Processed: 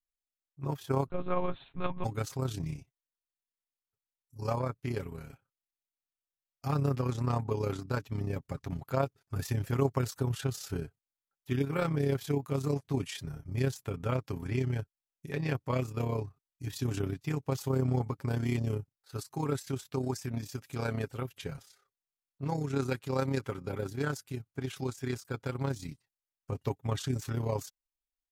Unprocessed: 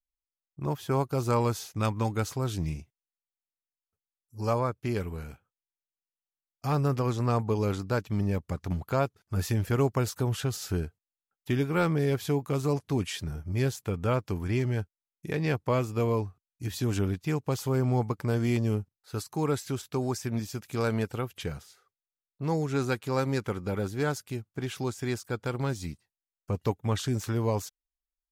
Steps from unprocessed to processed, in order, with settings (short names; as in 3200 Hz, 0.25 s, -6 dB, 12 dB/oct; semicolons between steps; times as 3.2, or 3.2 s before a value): AM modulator 33 Hz, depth 50%; 1.06–2.04 monotone LPC vocoder at 8 kHz 180 Hz; comb 7.4 ms, depth 54%; gain -3 dB